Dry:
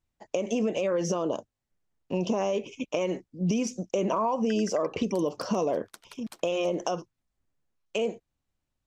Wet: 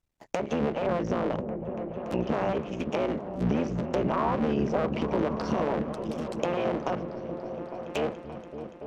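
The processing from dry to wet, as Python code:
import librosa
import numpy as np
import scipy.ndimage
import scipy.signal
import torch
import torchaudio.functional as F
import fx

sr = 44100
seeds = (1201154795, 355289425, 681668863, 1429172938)

y = fx.cycle_switch(x, sr, every=3, mode='muted')
y = fx.env_lowpass_down(y, sr, base_hz=2300.0, full_db=-26.5)
y = fx.echo_opening(y, sr, ms=286, hz=200, octaves=1, feedback_pct=70, wet_db=-3)
y = F.gain(torch.from_numpy(y), 1.0).numpy()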